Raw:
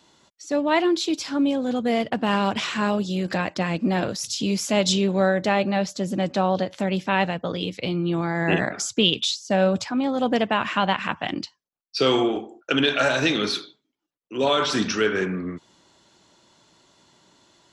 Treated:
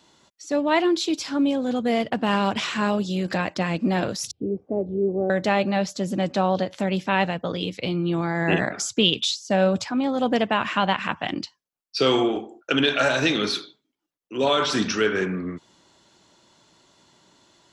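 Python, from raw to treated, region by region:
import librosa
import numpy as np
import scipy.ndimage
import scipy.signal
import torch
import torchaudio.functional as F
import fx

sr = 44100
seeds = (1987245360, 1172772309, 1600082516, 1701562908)

y = fx.chain(x, sr, fx.cheby1_lowpass(hz=550.0, order=3),
    fx.comb(ms=2.6, depth=0.49), at=(4.31, 5.3))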